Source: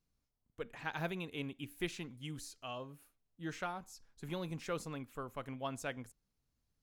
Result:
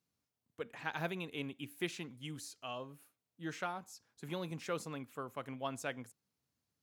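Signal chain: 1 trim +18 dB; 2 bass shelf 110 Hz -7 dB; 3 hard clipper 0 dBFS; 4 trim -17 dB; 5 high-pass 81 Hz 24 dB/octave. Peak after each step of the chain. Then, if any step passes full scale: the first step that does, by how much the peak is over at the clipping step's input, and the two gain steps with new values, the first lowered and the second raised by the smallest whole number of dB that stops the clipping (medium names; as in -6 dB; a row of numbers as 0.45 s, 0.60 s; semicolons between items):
-5.0 dBFS, -5.0 dBFS, -5.0 dBFS, -22.0 dBFS, -21.5 dBFS; nothing clips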